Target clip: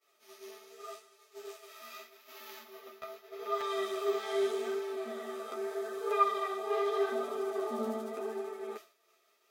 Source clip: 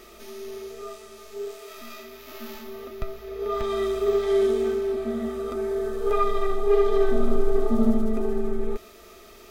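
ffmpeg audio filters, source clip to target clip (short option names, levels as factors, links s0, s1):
-af "flanger=delay=6.8:depth=7.1:regen=-1:speed=0.82:shape=sinusoidal,highpass=590,agate=range=0.0224:threshold=0.00794:ratio=3:detection=peak"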